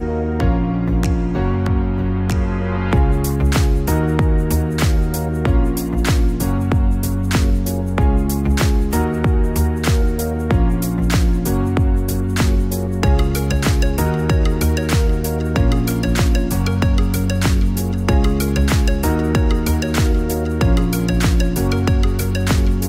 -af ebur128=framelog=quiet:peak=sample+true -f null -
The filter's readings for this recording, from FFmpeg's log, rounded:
Integrated loudness:
  I:         -17.9 LUFS
  Threshold: -27.9 LUFS
Loudness range:
  LRA:         0.7 LU
  Threshold: -37.9 LUFS
  LRA low:   -18.2 LUFS
  LRA high:  -17.5 LUFS
Sample peak:
  Peak:       -5.7 dBFS
True peak:
  Peak:       -5.6 dBFS